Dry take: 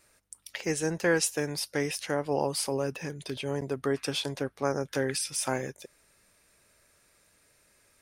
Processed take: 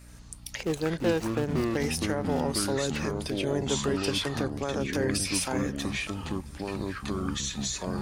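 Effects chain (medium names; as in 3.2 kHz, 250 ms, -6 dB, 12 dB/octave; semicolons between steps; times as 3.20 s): 0.63–1.77 s: median filter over 25 samples; in parallel at +1.5 dB: compression, threshold -42 dBFS, peak gain reduction 18.5 dB; on the sum: peak limiter -18.5 dBFS, peak gain reduction 7.5 dB; on a send: thinning echo 654 ms, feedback 42%, level -22 dB; on the sum: hum 60 Hz, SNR 17 dB; ever faster or slower copies 80 ms, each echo -6 st, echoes 2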